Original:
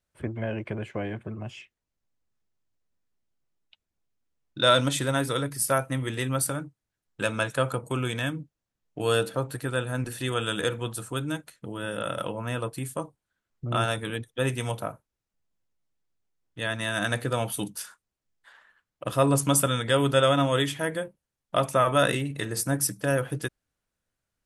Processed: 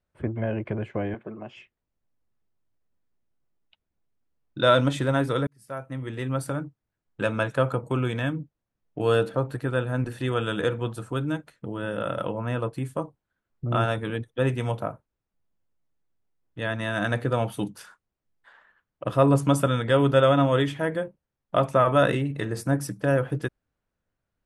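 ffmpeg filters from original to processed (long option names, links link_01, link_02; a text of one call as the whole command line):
ffmpeg -i in.wav -filter_complex "[0:a]asettb=1/sr,asplit=3[link_01][link_02][link_03];[link_01]atrim=end=1.144[link_04];[link_02]atrim=start=1.14:end=1.56,asetpts=PTS-STARTPTS,afade=type=in:duration=0.004:curve=qsin,afade=type=out:start_time=0.416:duration=0.004:curve=qsin,highpass=260,lowpass=5500[link_05];[link_03]atrim=start=1.556[link_06];[link_04][link_05]acrossfade=duration=0.004:curve1=hsin:curve2=qsin[link_07];[link_07][link_06]acrossfade=duration=0.004:curve1=qsin:curve2=hsin,asplit=2[link_08][link_09];[link_08]atrim=end=5.47,asetpts=PTS-STARTPTS,afade=type=out:start_time=5.466:duration=0.004:curve=hsin[link_10];[link_09]atrim=start=5.47,asetpts=PTS-STARTPTS,afade=type=in:duration=1.17[link_11];[link_10][link_11]concat=n=2:v=0:a=1,lowpass=frequency=1400:poles=1,volume=3.5dB" out.wav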